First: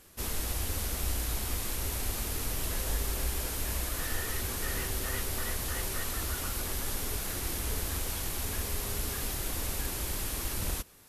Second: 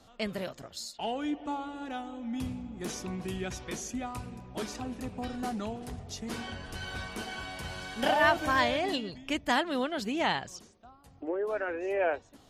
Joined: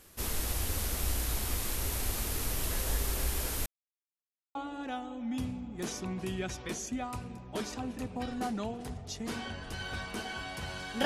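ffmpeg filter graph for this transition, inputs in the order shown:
ffmpeg -i cue0.wav -i cue1.wav -filter_complex "[0:a]apad=whole_dur=11.05,atrim=end=11.05,asplit=2[link_01][link_02];[link_01]atrim=end=3.66,asetpts=PTS-STARTPTS,afade=type=out:start_time=3.656:duration=0.004:curve=hsin[link_03];[link_02]atrim=start=3.66:end=4.55,asetpts=PTS-STARTPTS,volume=0[link_04];[1:a]atrim=start=1.57:end=8.07,asetpts=PTS-STARTPTS,afade=type=in:duration=0.004:curve=hsin[link_05];[link_03][link_04][link_05]concat=n=3:v=0:a=1" out.wav

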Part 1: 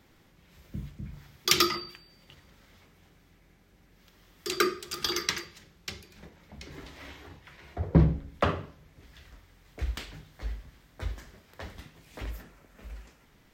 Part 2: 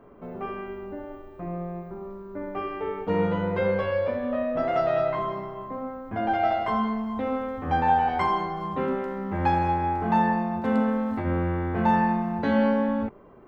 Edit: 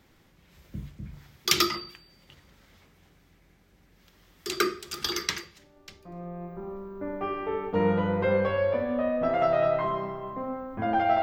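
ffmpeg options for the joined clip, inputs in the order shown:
ffmpeg -i cue0.wav -i cue1.wav -filter_complex "[0:a]apad=whole_dur=11.22,atrim=end=11.22,atrim=end=6.65,asetpts=PTS-STARTPTS[link_01];[1:a]atrim=start=0.67:end=6.56,asetpts=PTS-STARTPTS[link_02];[link_01][link_02]acrossfade=duration=1.32:curve1=qua:curve2=qua" out.wav

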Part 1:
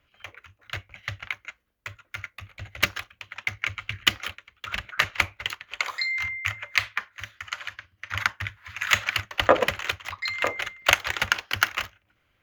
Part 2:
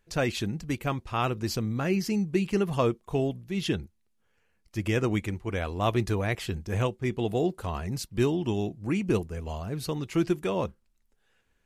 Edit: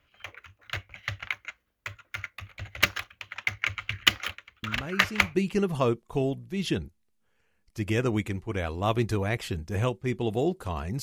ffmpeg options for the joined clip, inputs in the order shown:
ffmpeg -i cue0.wav -i cue1.wav -filter_complex "[1:a]asplit=2[link_01][link_02];[0:a]apad=whole_dur=11.02,atrim=end=11.02,atrim=end=5.352[link_03];[link_02]atrim=start=2.328:end=8[link_04];[link_01]atrim=start=1.61:end=2.33,asetpts=PTS-STARTPTS,volume=-8dB,afade=type=in:duration=0.004:curve=hsin,afade=type=out:start_time=0.716:duration=0.004:curve=hsin,adelay=4630[link_05];[link_03][link_04]acrossfade=duration=0.004:curve1=hsin:curve2=hsin[link_06];[link_06][link_05]amix=inputs=2:normalize=0" out.wav

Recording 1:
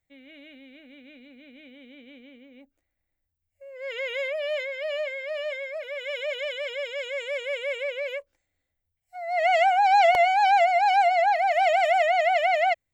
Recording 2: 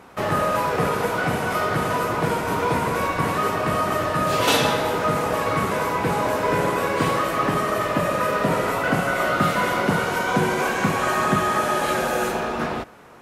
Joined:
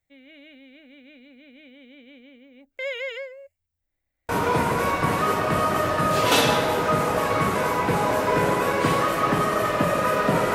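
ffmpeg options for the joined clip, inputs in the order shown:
ffmpeg -i cue0.wav -i cue1.wav -filter_complex "[0:a]apad=whole_dur=10.54,atrim=end=10.54,asplit=2[link_01][link_02];[link_01]atrim=end=2.792[link_03];[link_02]atrim=start=2.788:end=4.292,asetpts=PTS-STARTPTS,areverse[link_04];[1:a]atrim=start=2.448:end=8.7[link_05];[link_03][link_04]acrossfade=duration=0.004:curve1=hsin:curve2=hsin[link_06];[link_06][link_05]acrossfade=duration=0.004:curve1=hsin:curve2=hsin" out.wav

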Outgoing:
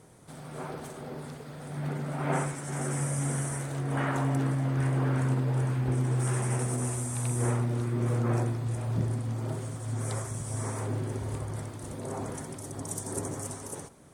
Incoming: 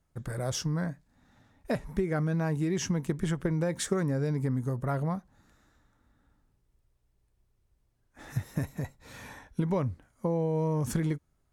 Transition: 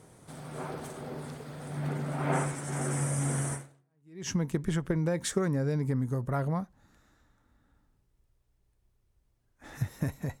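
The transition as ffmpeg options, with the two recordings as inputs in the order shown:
ffmpeg -i cue0.wav -i cue1.wav -filter_complex "[0:a]apad=whole_dur=10.4,atrim=end=10.4,atrim=end=4.29,asetpts=PTS-STARTPTS[link_01];[1:a]atrim=start=2.08:end=8.95,asetpts=PTS-STARTPTS[link_02];[link_01][link_02]acrossfade=duration=0.76:curve1=exp:curve2=exp" out.wav

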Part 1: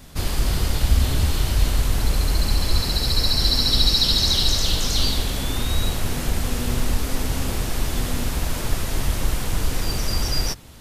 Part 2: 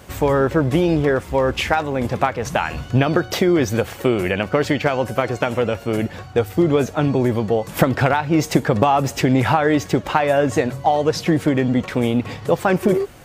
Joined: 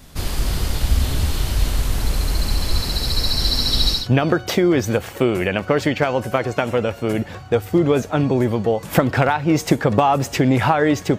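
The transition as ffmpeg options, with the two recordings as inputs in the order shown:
ffmpeg -i cue0.wav -i cue1.wav -filter_complex "[0:a]apad=whole_dur=11.18,atrim=end=11.18,atrim=end=4.09,asetpts=PTS-STARTPTS[link_01];[1:a]atrim=start=2.75:end=10.02,asetpts=PTS-STARTPTS[link_02];[link_01][link_02]acrossfade=duration=0.18:curve1=tri:curve2=tri" out.wav

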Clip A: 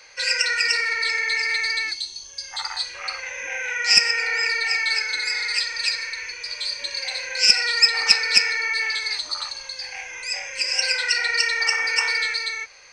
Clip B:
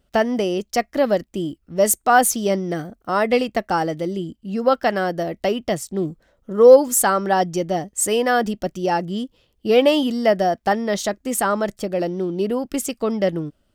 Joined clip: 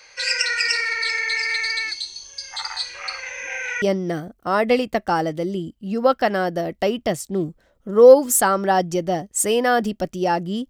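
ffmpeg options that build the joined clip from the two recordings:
ffmpeg -i cue0.wav -i cue1.wav -filter_complex "[0:a]apad=whole_dur=10.69,atrim=end=10.69,atrim=end=3.822[link_01];[1:a]atrim=start=2.438:end=9.31[link_02];[link_01][link_02]acrossfade=duration=0.004:curve1=hsin:curve2=hsin" out.wav

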